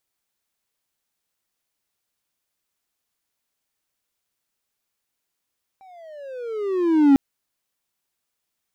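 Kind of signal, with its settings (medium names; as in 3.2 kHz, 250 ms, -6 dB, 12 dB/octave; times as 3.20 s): gliding synth tone triangle, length 1.35 s, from 783 Hz, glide -18.5 st, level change +36 dB, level -7 dB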